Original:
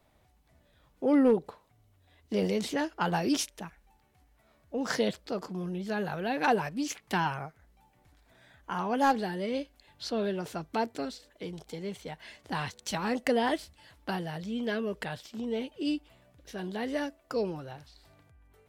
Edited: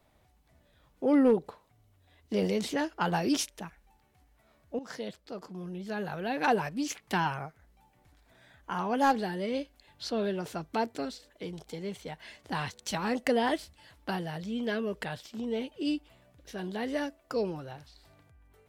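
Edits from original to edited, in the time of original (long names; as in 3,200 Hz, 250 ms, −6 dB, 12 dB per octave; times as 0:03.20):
0:04.79–0:06.61: fade in, from −13.5 dB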